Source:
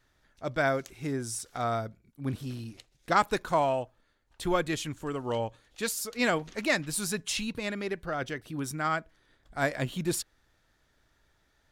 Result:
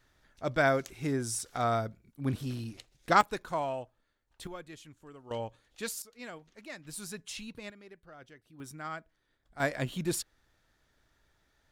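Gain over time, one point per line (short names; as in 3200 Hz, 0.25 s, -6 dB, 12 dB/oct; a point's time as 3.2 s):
+1 dB
from 3.21 s -7 dB
from 4.47 s -17 dB
from 5.31 s -5.5 dB
from 6.02 s -18 dB
from 6.85 s -10 dB
from 7.7 s -19 dB
from 8.6 s -10.5 dB
from 9.6 s -2 dB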